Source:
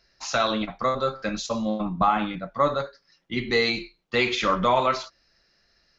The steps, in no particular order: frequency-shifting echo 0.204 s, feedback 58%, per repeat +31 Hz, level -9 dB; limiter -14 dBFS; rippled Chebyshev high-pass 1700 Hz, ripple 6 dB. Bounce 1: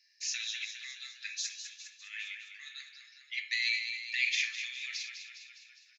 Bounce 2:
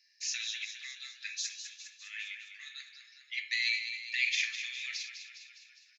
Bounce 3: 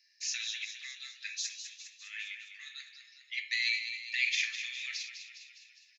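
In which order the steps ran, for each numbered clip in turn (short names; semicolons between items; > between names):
frequency-shifting echo > limiter > rippled Chebyshev high-pass; limiter > frequency-shifting echo > rippled Chebyshev high-pass; limiter > rippled Chebyshev high-pass > frequency-shifting echo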